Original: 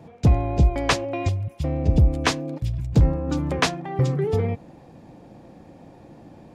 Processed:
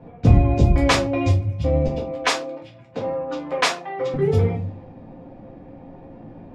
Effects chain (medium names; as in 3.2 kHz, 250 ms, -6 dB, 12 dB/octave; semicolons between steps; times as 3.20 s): 1.86–4.14 s: high-pass 510 Hz 12 dB/octave; level-controlled noise filter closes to 1.9 kHz, open at -18 dBFS; reverberation RT60 0.35 s, pre-delay 4 ms, DRR -3 dB; trim -1.5 dB